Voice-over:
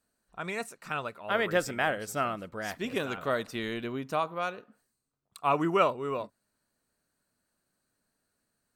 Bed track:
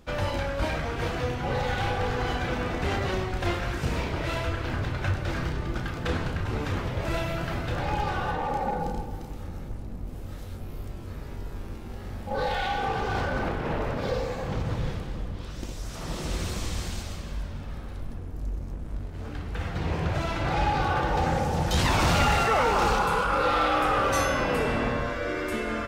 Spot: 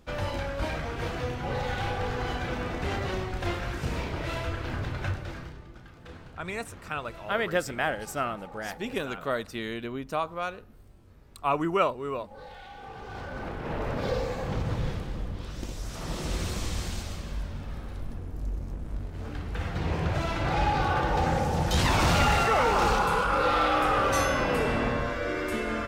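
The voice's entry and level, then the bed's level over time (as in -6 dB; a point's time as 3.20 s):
6.00 s, 0.0 dB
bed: 5.06 s -3 dB
5.72 s -17.5 dB
12.70 s -17.5 dB
13.97 s -0.5 dB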